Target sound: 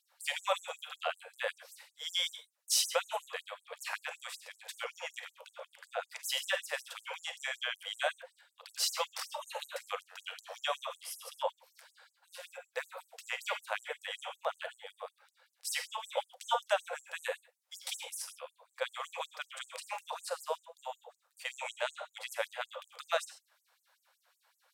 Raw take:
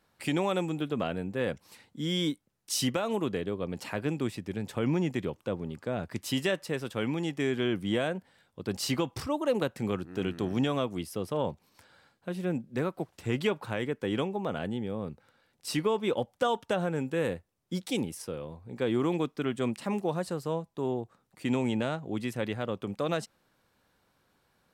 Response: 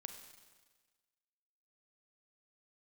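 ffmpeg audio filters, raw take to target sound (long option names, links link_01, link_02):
-filter_complex "[1:a]atrim=start_sample=2205,atrim=end_sample=6174[link_01];[0:a][link_01]afir=irnorm=-1:irlink=0,afftfilt=real='re*gte(b*sr/1024,460*pow(6500/460,0.5+0.5*sin(2*PI*5.3*pts/sr)))':imag='im*gte(b*sr/1024,460*pow(6500/460,0.5+0.5*sin(2*PI*5.3*pts/sr)))':win_size=1024:overlap=0.75,volume=7.5dB"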